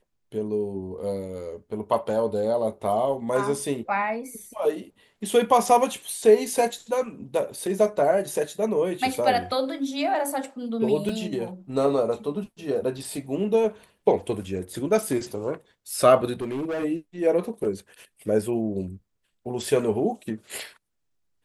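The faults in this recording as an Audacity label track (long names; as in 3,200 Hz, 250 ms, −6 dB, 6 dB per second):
11.090000	11.090000	drop-out 2.2 ms
16.410000	16.850000	clipping −25.5 dBFS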